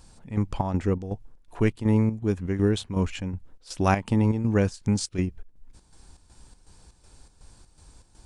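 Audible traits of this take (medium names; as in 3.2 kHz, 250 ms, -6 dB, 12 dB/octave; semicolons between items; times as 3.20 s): chopped level 2.7 Hz, depth 60%, duty 65%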